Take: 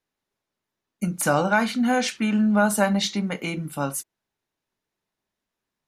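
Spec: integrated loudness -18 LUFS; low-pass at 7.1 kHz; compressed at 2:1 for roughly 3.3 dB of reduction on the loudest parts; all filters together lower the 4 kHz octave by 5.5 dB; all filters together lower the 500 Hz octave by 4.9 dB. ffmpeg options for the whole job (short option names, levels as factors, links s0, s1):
-af "lowpass=7100,equalizer=f=500:t=o:g=-6,equalizer=f=4000:t=o:g=-6.5,acompressor=threshold=0.0631:ratio=2,volume=2.99"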